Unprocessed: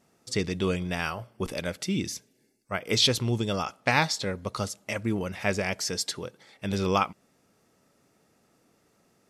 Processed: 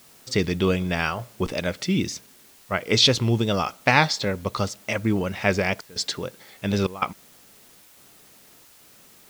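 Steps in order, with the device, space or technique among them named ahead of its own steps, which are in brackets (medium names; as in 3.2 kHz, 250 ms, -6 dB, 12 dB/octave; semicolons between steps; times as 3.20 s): worn cassette (low-pass 6 kHz 12 dB/octave; wow and flutter; level dips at 5.81/6.87/7.81/8.65 s, 148 ms -19 dB; white noise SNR 27 dB); trim +5.5 dB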